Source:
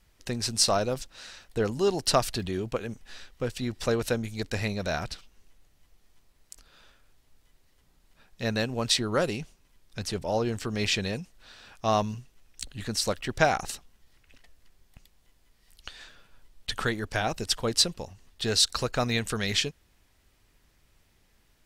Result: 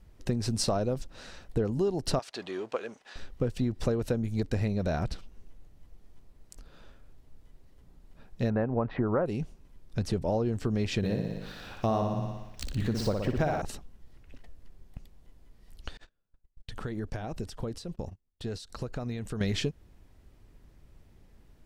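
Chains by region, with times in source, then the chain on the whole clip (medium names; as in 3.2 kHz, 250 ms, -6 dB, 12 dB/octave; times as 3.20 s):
2.19–3.16 s: companding laws mixed up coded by mu + band-pass 720–6900 Hz
8.50–9.26 s: low-pass 2 kHz 24 dB/octave + peaking EQ 940 Hz +9 dB 1.8 oct
10.97–13.62 s: median filter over 5 samples + flutter echo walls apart 10.1 m, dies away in 0.74 s + tape noise reduction on one side only encoder only
15.97–19.41 s: gate -46 dBFS, range -33 dB + compression 8:1, threshold -38 dBFS
whole clip: tilt shelf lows +8 dB, about 910 Hz; compression 6:1, threshold -27 dBFS; trim +2 dB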